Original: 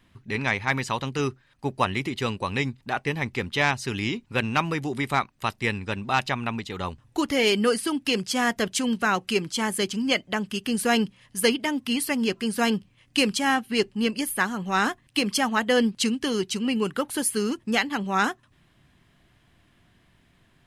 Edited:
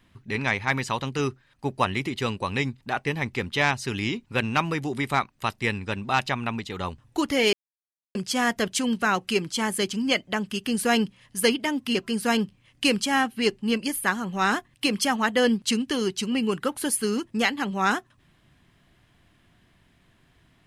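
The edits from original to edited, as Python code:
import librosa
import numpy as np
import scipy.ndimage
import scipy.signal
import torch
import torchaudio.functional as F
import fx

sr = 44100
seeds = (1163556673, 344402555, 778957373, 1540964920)

y = fx.edit(x, sr, fx.silence(start_s=7.53, length_s=0.62),
    fx.cut(start_s=11.95, length_s=0.33), tone=tone)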